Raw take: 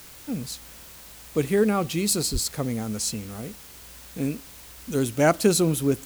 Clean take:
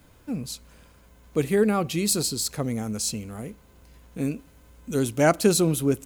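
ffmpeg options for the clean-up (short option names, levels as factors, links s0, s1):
-filter_complex "[0:a]asplit=3[s0][s1][s2];[s0]afade=t=out:st=2.32:d=0.02[s3];[s1]highpass=f=140:w=0.5412,highpass=f=140:w=1.3066,afade=t=in:st=2.32:d=0.02,afade=t=out:st=2.44:d=0.02[s4];[s2]afade=t=in:st=2.44:d=0.02[s5];[s3][s4][s5]amix=inputs=3:normalize=0,afwtdn=0.005"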